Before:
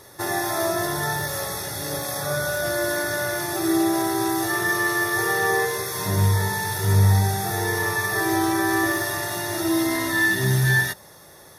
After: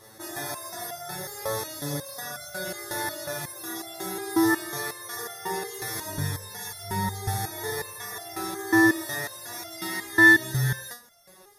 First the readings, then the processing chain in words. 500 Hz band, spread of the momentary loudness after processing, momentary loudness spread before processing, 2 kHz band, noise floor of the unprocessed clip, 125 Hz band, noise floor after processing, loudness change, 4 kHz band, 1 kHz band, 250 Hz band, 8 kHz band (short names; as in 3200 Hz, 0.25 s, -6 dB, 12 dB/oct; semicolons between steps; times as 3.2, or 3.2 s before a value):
-7.5 dB, 15 LU, 7 LU, -1.5 dB, -47 dBFS, -10.5 dB, -52 dBFS, -4.5 dB, -6.0 dB, -7.5 dB, -3.5 dB, -6.0 dB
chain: stepped resonator 5.5 Hz 110–690 Hz; gain +7 dB